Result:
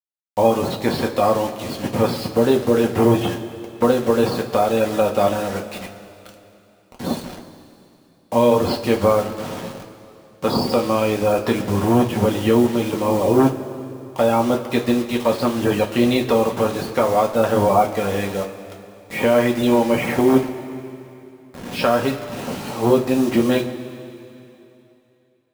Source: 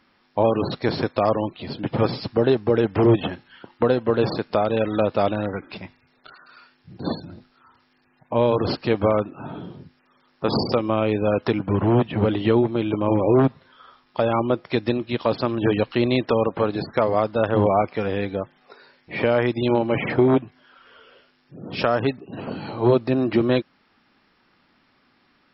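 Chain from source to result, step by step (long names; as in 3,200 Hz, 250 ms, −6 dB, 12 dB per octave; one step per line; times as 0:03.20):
bit-depth reduction 6 bits, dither none
coupled-rooms reverb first 0.21 s, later 2.9 s, from −18 dB, DRR 0 dB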